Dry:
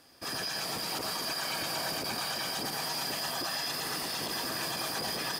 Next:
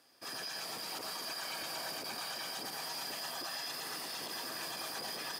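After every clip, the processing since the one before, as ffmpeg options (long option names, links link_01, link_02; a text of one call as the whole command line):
ffmpeg -i in.wav -af "highpass=frequency=300:poles=1,volume=-6.5dB" out.wav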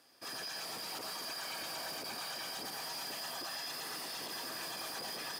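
ffmpeg -i in.wav -af "asoftclip=type=tanh:threshold=-36dB,volume=1dB" out.wav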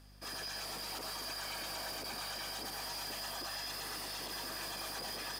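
ffmpeg -i in.wav -af "aeval=exprs='val(0)+0.00141*(sin(2*PI*50*n/s)+sin(2*PI*2*50*n/s)/2+sin(2*PI*3*50*n/s)/3+sin(2*PI*4*50*n/s)/4+sin(2*PI*5*50*n/s)/5)':channel_layout=same" out.wav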